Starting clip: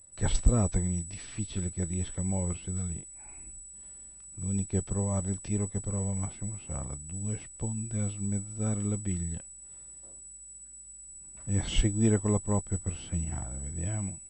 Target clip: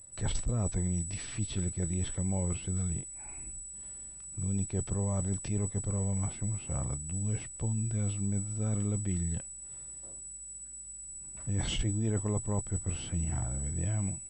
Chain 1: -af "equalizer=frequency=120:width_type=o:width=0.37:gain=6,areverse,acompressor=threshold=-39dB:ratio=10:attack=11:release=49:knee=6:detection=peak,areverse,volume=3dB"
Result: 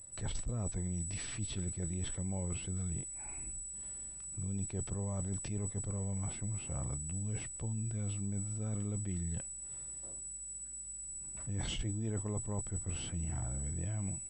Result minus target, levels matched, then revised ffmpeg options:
downward compressor: peak gain reduction +6.5 dB
-af "equalizer=frequency=120:width_type=o:width=0.37:gain=6,areverse,acompressor=threshold=-32dB:ratio=10:attack=11:release=49:knee=6:detection=peak,areverse,volume=3dB"

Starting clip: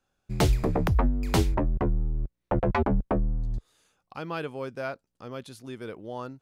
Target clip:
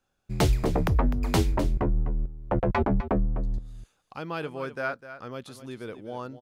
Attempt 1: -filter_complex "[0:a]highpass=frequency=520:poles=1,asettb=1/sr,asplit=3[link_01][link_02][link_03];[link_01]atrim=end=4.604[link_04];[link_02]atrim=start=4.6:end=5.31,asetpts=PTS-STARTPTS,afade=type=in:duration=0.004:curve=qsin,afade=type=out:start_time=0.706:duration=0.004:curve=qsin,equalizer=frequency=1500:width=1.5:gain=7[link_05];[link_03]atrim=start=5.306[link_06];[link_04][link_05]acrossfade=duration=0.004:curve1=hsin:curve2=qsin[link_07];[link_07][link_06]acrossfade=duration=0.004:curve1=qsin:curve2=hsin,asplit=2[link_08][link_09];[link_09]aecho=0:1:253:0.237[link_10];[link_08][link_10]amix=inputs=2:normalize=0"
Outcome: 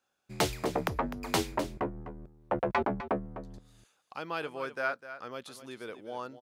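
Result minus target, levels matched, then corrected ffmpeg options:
500 Hz band +2.5 dB
-filter_complex "[0:a]asettb=1/sr,asplit=3[link_01][link_02][link_03];[link_01]atrim=end=4.604[link_04];[link_02]atrim=start=4.6:end=5.31,asetpts=PTS-STARTPTS,afade=type=in:duration=0.004:curve=qsin,afade=type=out:start_time=0.706:duration=0.004:curve=qsin,equalizer=frequency=1500:width=1.5:gain=7[link_05];[link_03]atrim=start=5.306[link_06];[link_04][link_05]acrossfade=duration=0.004:curve1=hsin:curve2=qsin[link_07];[link_07][link_06]acrossfade=duration=0.004:curve1=qsin:curve2=hsin,asplit=2[link_08][link_09];[link_09]aecho=0:1:253:0.237[link_10];[link_08][link_10]amix=inputs=2:normalize=0"

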